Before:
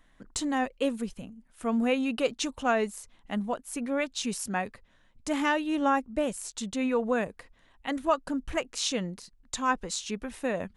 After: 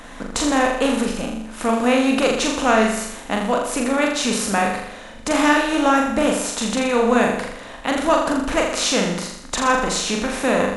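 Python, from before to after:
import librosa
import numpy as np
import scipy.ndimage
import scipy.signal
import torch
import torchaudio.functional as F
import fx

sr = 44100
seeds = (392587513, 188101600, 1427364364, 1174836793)

y = fx.bin_compress(x, sr, power=0.6)
y = fx.room_flutter(y, sr, wall_m=7.0, rt60_s=0.76)
y = y * 10.0 ** (5.0 / 20.0)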